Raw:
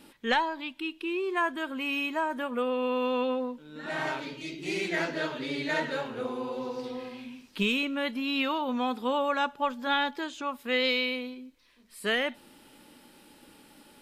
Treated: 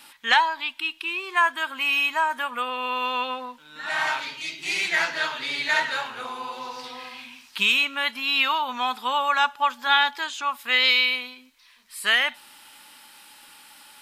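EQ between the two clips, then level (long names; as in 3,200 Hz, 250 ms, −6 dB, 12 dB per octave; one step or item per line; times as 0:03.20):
tilt shelving filter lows −4.5 dB, about 1,100 Hz
low shelf with overshoot 630 Hz −10.5 dB, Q 1.5
+6.0 dB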